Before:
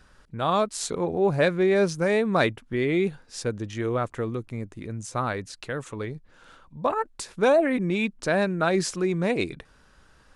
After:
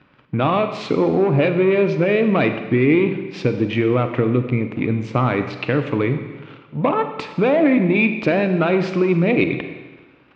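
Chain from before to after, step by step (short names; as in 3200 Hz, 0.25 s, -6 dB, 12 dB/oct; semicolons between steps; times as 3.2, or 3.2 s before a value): sample leveller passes 2; compressor, threshold -23 dBFS, peak gain reduction 9.5 dB; speaker cabinet 130–3200 Hz, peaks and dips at 130 Hz +8 dB, 290 Hz +8 dB, 1600 Hz -6 dB, 2400 Hz +7 dB; Schroeder reverb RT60 1.3 s, combs from 32 ms, DRR 7.5 dB; gain +6.5 dB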